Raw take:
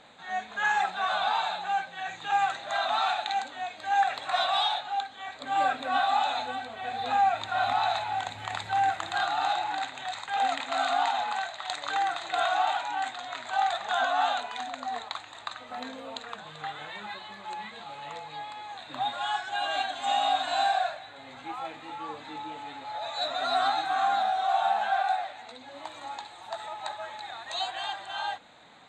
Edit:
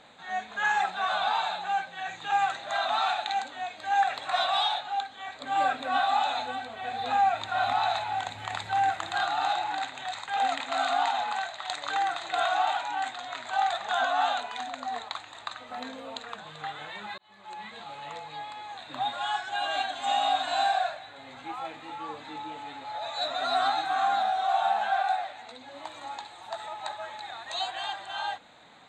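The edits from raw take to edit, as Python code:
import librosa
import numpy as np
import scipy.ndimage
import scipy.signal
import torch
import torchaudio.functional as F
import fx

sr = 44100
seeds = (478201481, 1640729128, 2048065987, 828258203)

y = fx.edit(x, sr, fx.fade_in_span(start_s=17.18, length_s=0.57), tone=tone)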